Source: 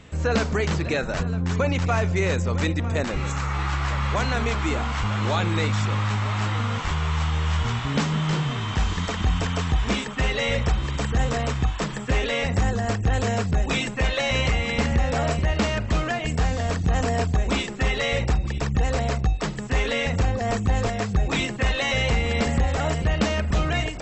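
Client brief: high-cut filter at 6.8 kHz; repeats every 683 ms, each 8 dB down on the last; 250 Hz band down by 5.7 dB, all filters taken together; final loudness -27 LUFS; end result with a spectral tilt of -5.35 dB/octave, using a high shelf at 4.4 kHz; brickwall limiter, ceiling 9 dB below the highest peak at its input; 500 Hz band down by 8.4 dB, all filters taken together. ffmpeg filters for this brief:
-af "lowpass=6800,equalizer=f=250:t=o:g=-6.5,equalizer=f=500:t=o:g=-9,highshelf=f=4400:g=-4,alimiter=limit=0.075:level=0:latency=1,aecho=1:1:683|1366|2049|2732|3415:0.398|0.159|0.0637|0.0255|0.0102,volume=1.5"

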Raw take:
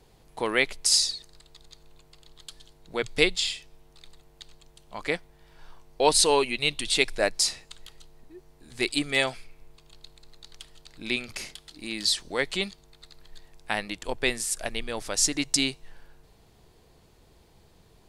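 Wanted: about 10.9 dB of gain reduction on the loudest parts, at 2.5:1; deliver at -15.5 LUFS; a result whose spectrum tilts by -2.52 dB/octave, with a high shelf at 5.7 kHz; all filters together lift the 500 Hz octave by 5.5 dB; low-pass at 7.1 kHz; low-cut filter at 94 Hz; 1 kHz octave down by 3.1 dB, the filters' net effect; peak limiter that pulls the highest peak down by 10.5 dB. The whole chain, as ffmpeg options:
-af "highpass=94,lowpass=7100,equalizer=f=500:t=o:g=8,equalizer=f=1000:t=o:g=-7,highshelf=f=5700:g=-8,acompressor=threshold=0.0316:ratio=2.5,volume=11.2,alimiter=limit=0.708:level=0:latency=1"

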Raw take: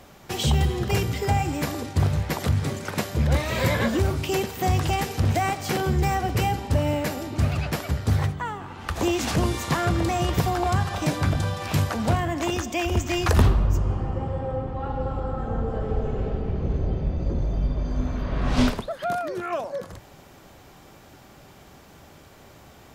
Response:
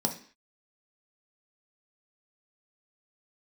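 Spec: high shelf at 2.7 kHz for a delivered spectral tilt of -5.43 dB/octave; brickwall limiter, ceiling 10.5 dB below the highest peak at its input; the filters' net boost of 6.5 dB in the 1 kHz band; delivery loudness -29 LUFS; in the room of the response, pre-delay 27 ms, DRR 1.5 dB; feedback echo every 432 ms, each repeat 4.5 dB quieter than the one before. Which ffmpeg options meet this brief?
-filter_complex "[0:a]equalizer=f=1000:t=o:g=8.5,highshelf=f=2700:g=6,alimiter=limit=0.2:level=0:latency=1,aecho=1:1:432|864|1296|1728|2160|2592|3024|3456|3888:0.596|0.357|0.214|0.129|0.0772|0.0463|0.0278|0.0167|0.01,asplit=2[s0][s1];[1:a]atrim=start_sample=2205,adelay=27[s2];[s1][s2]afir=irnorm=-1:irlink=0,volume=0.376[s3];[s0][s3]amix=inputs=2:normalize=0,volume=0.316"

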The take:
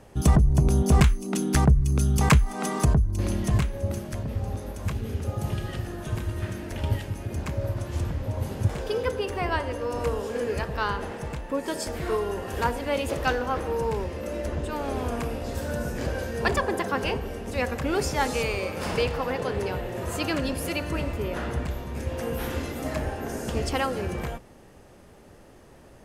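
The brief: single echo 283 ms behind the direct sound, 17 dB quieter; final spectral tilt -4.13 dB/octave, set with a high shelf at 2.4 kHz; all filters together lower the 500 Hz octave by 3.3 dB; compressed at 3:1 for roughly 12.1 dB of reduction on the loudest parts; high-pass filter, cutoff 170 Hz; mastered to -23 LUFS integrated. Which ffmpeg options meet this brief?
-af "highpass=170,equalizer=f=500:t=o:g=-4,highshelf=f=2400:g=3.5,acompressor=threshold=0.0224:ratio=3,aecho=1:1:283:0.141,volume=4.47"

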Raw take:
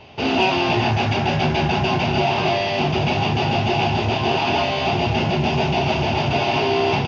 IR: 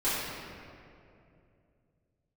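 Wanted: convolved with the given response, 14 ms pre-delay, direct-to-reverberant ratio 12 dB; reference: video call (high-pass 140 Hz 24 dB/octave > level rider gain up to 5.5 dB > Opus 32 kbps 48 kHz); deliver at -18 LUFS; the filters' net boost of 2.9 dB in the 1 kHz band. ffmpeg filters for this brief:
-filter_complex "[0:a]equalizer=f=1000:t=o:g=4,asplit=2[s0][s1];[1:a]atrim=start_sample=2205,adelay=14[s2];[s1][s2]afir=irnorm=-1:irlink=0,volume=0.0708[s3];[s0][s3]amix=inputs=2:normalize=0,highpass=f=140:w=0.5412,highpass=f=140:w=1.3066,dynaudnorm=m=1.88,volume=1.06" -ar 48000 -c:a libopus -b:a 32k

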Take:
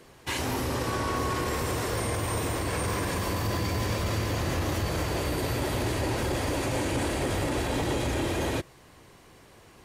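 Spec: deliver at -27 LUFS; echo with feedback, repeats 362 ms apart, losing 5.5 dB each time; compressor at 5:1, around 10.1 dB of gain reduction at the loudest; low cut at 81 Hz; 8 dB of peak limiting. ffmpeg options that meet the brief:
-af "highpass=81,acompressor=threshold=0.0141:ratio=5,alimiter=level_in=2.99:limit=0.0631:level=0:latency=1,volume=0.335,aecho=1:1:362|724|1086|1448|1810|2172|2534:0.531|0.281|0.149|0.079|0.0419|0.0222|0.0118,volume=5.31"

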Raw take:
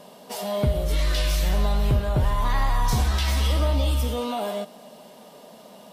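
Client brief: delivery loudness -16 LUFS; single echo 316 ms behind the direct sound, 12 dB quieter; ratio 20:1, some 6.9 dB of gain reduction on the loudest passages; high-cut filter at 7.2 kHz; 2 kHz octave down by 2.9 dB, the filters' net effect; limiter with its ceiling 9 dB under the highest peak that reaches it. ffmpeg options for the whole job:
-af "lowpass=7200,equalizer=f=2000:t=o:g=-3.5,acompressor=threshold=0.0631:ratio=20,alimiter=level_in=1.19:limit=0.0631:level=0:latency=1,volume=0.841,aecho=1:1:316:0.251,volume=8.41"

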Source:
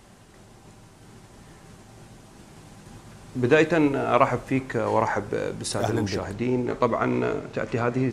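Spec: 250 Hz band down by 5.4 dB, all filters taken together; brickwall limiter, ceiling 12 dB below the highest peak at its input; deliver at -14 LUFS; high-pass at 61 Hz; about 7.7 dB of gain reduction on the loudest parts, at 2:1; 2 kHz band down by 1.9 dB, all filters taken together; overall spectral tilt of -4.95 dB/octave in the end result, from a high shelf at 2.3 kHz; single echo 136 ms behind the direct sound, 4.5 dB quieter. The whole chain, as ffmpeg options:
-af "highpass=61,equalizer=f=250:t=o:g=-7,equalizer=f=2000:t=o:g=-4,highshelf=f=2300:g=3,acompressor=threshold=0.0355:ratio=2,alimiter=limit=0.0631:level=0:latency=1,aecho=1:1:136:0.596,volume=9.44"

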